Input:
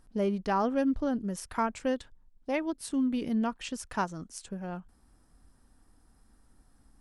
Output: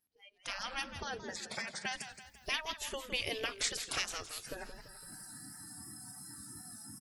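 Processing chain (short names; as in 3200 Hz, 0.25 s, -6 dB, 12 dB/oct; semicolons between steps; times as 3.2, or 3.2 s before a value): resonant high shelf 1700 Hz +7.5 dB, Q 1.5; compressor 2:1, threshold -53 dBFS, peak gain reduction 16 dB; spectral gate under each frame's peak -15 dB weak; echo 0.211 s -19.5 dB; AGC gain up to 15 dB; 1.03–1.95 speaker cabinet 140–8000 Hz, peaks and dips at 210 Hz +10 dB, 300 Hz -9 dB, 1200 Hz -7 dB, 2900 Hz -6 dB; 4.66–5.55 spectral repair 350–5700 Hz after; spectral noise reduction 26 dB; warbling echo 0.168 s, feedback 47%, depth 176 cents, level -10.5 dB; gain +3.5 dB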